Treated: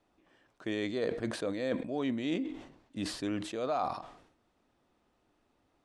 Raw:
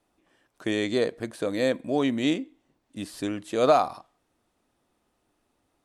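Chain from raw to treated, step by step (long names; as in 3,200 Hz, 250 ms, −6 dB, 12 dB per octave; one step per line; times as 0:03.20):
reversed playback
downward compressor 6 to 1, threshold −30 dBFS, peak gain reduction 15 dB
reversed playback
high-frequency loss of the air 79 metres
level that may fall only so fast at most 81 dB per second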